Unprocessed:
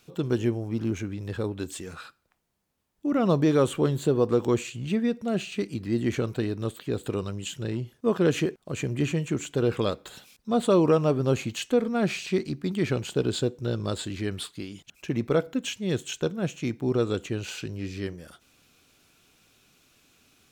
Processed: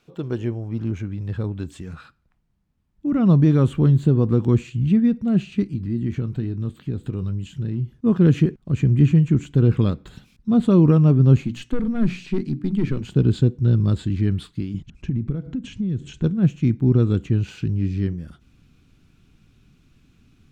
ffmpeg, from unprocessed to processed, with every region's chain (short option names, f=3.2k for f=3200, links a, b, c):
-filter_complex "[0:a]asettb=1/sr,asplit=3[a][b][c];[a]atrim=end=5.634[d];[b]atrim=start=5.63:end=7.98,asetpts=PTS-STARTPTS,afade=t=in:d=0.004:c=qsin,afade=t=out:st=2.346:d=0.004:c=qsin,acompressor=threshold=-42dB:ratio=1.5:attack=3.2:release=140:knee=1:detection=peak,asplit=2[e][f];[f]adelay=22,volume=-13dB[g];[e][g]amix=inputs=2:normalize=0,atrim=end_sample=103635[h];[c]atrim=start=7.976[i];[d][h]acrossfade=d=0.004:c1=hsin:c2=qsin[j];[j][i]acrossfade=d=0.004:c1=qsin:c2=hsin,asettb=1/sr,asplit=3[k][l][m];[k]atrim=end=11.414[n];[l]atrim=start=11.41:end=13.05,asetpts=PTS-STARTPTS,afade=t=in:d=0.004:c=qsin,afade=t=out:st=1.636:d=0.004:c=qsin,highpass=170,aeval=exprs='(tanh(11.2*val(0)+0.15)-tanh(0.15))/11.2':c=same,bandreject=f=60:t=h:w=6,bandreject=f=120:t=h:w=6,bandreject=f=180:t=h:w=6,bandreject=f=240:t=h:w=6,bandreject=f=300:t=h:w=6[o];[m]atrim=start=13.046[p];[n][o]acrossfade=d=0.004:c1=hsin:c2=qsin[q];[q][p]acrossfade=d=0.004:c1=qsin:c2=hsin,asettb=1/sr,asplit=3[r][s][t];[r]atrim=end=14.744[u];[s]atrim=start=14.74:end=16.24,asetpts=PTS-STARTPTS,afade=t=in:d=0.004:c=qsin,afade=t=out:st=1.496:d=0.004:c=qsin,lowpass=f=9.1k:w=0.5412,lowpass=f=9.1k:w=1.3066,lowshelf=f=440:g=7.5,acompressor=threshold=-31dB:ratio=10:attack=3.2:release=140:knee=1:detection=peak[v];[t]atrim=start=16.236[w];[u][v]acrossfade=d=0.004:c1=hsin:c2=qsin[x];[x][w]acrossfade=d=0.004:c1=qsin:c2=hsin,asubboost=boost=11:cutoff=170,lowpass=f=2.3k:p=1,equalizer=f=88:w=1.6:g=-4.5"